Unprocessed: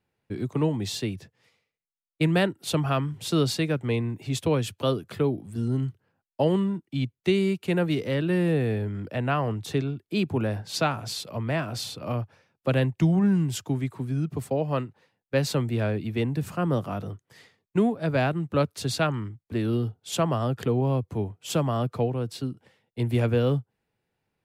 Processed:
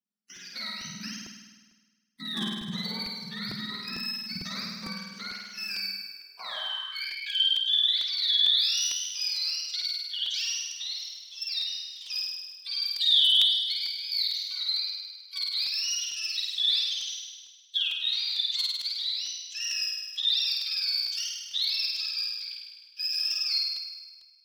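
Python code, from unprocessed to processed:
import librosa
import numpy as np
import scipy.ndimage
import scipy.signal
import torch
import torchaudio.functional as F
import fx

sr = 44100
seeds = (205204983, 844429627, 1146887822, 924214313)

y = fx.octave_mirror(x, sr, pivot_hz=780.0)
y = fx.level_steps(y, sr, step_db=11)
y = F.preemphasis(torch.from_numpy(y), 0.9).numpy()
y = fx.leveller(y, sr, passes=1)
y = np.clip(10.0 ** (31.5 / 20.0) * y, -1.0, 1.0) / 10.0 ** (31.5 / 20.0)
y = fx.notch(y, sr, hz=6800.0, q=9.5)
y = fx.room_flutter(y, sr, wall_m=8.8, rt60_s=1.4)
y = fx.filter_sweep_highpass(y, sr, from_hz=200.0, to_hz=3400.0, start_s=5.97, end_s=7.48, q=5.5)
y = fx.buffer_crackle(y, sr, first_s=0.36, period_s=0.45, block=128, kind='repeat')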